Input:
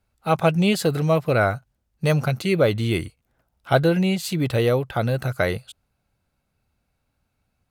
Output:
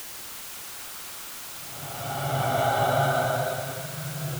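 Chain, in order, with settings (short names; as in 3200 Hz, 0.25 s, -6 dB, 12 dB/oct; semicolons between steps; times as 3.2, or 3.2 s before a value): high shelf 9900 Hz -4 dB; resonator 140 Hz, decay 0.49 s, harmonics all, mix 40%; de-hum 109.1 Hz, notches 19; grains, grains 20/s, pitch spread up and down by 0 st; Paulstretch 36×, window 0.10 s, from 3.57; requantised 6-bit, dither triangular; plain phase-vocoder stretch 0.57×; delay with a stepping band-pass 0.117 s, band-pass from 1100 Hz, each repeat 1.4 oct, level -1 dB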